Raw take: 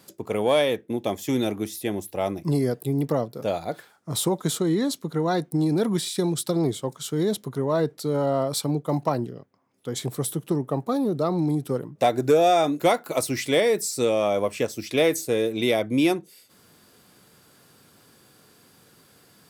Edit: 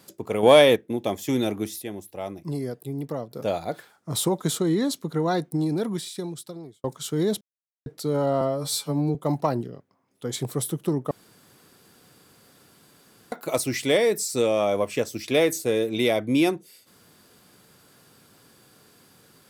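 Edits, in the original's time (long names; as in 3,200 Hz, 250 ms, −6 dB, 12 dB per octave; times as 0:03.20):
0:00.43–0:00.76: clip gain +6.5 dB
0:01.82–0:03.31: clip gain −7 dB
0:05.27–0:06.84: fade out
0:07.41–0:07.86: silence
0:08.41–0:08.78: time-stretch 2×
0:10.74–0:12.95: fill with room tone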